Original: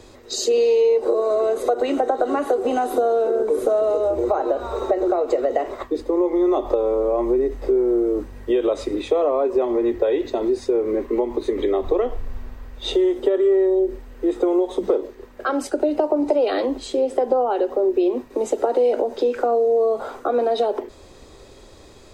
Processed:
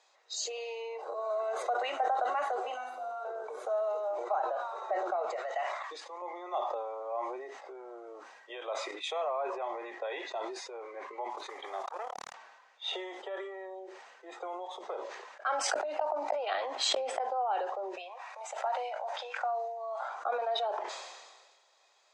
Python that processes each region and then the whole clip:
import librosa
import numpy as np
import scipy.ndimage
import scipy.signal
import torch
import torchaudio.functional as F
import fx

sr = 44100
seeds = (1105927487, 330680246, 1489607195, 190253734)

y = fx.chain(x, sr, fx.stiff_resonator(f0_hz=84.0, decay_s=0.28, stiffness=0.002),
    fx.room_flutter(wall_m=8.8, rt60_s=0.97),
    fx.band_squash(depth_pct=70), at=(2.74, 3.25))
y = fx.chain(y, sr, fx.highpass(hz=740.0, slope=6),
    fx.high_shelf(hz=2100.0, db=5.5), at=(5.36, 6.22))
y = fx.chain(y, sr, fx.high_shelf(hz=2600.0, db=8.5),
    fx.band_widen(depth_pct=100), at=(8.91, 9.62))
y = fx.chain(y, sr, fx.mod_noise(seeds[0], snr_db=26),
    fx.transformer_sat(knee_hz=490.0), at=(11.3, 12.34))
y = fx.chain(y, sr, fx.gate_flip(shuts_db=-13.0, range_db=-25),
    fx.env_flatten(amount_pct=100), at=(15.49, 17.21))
y = fx.chain(y, sr, fx.highpass(hz=610.0, slope=24),
    fx.sustainer(db_per_s=32.0), at=(17.97, 20.09))
y = fx.noise_reduce_blind(y, sr, reduce_db=7)
y = scipy.signal.sosfilt(scipy.signal.ellip(3, 1.0, 80, [720.0, 6900.0], 'bandpass', fs=sr, output='sos'), y)
y = fx.sustainer(y, sr, db_per_s=38.0)
y = y * librosa.db_to_amplitude(-7.5)